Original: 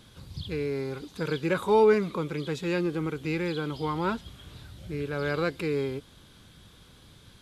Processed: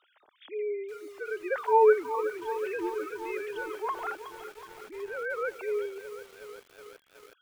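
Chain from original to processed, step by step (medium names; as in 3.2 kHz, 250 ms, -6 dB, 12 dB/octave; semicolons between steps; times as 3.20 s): formants replaced by sine waves; three-band isolator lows -18 dB, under 470 Hz, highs -14 dB, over 2.5 kHz; bit-crushed delay 369 ms, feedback 80%, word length 8-bit, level -11.5 dB; trim +3 dB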